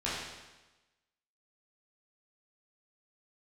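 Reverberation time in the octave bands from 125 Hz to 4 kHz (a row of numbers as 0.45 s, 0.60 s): 1.1 s, 1.1 s, 1.1 s, 1.1 s, 1.1 s, 1.1 s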